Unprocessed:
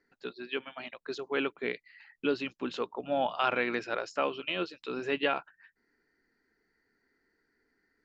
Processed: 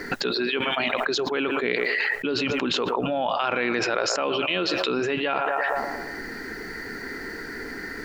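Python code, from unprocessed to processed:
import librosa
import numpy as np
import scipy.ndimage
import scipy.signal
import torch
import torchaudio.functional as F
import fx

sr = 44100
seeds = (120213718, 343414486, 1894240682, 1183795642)

y = fx.echo_banded(x, sr, ms=116, feedback_pct=53, hz=820.0, wet_db=-18)
y = fx.env_flatten(y, sr, amount_pct=100)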